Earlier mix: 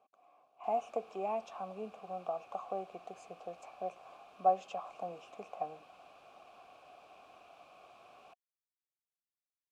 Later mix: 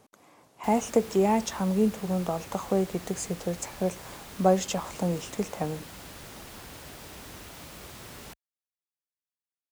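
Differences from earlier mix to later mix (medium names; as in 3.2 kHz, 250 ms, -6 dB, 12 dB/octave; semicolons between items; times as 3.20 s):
background: add high-pass 43 Hz; master: remove vowel filter a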